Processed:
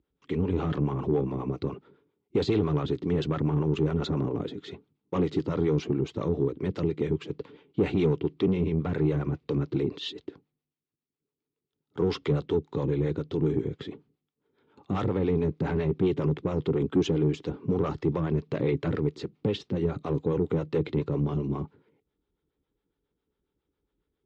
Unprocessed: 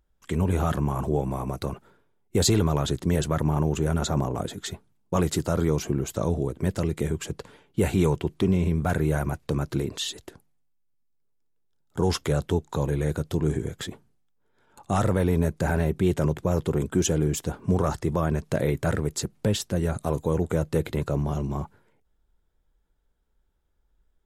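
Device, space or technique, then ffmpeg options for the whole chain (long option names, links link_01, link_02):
guitar amplifier with harmonic tremolo: -filter_complex "[0:a]acrossover=split=480[link_01][link_02];[link_01]aeval=exprs='val(0)*(1-0.7/2+0.7/2*cos(2*PI*7.3*n/s))':channel_layout=same[link_03];[link_02]aeval=exprs='val(0)*(1-0.7/2-0.7/2*cos(2*PI*7.3*n/s))':channel_layout=same[link_04];[link_03][link_04]amix=inputs=2:normalize=0,asoftclip=type=tanh:threshold=-22.5dB,highpass=93,equalizer=frequency=150:width_type=q:width=4:gain=3,equalizer=frequency=290:width_type=q:width=4:gain=9,equalizer=frequency=420:width_type=q:width=4:gain=7,equalizer=frequency=650:width_type=q:width=4:gain=-8,equalizer=frequency=920:width_type=q:width=4:gain=-3,equalizer=frequency=1600:width_type=q:width=4:gain=-7,lowpass=frequency=4100:width=0.5412,lowpass=frequency=4100:width=1.3066,volume=1.5dB"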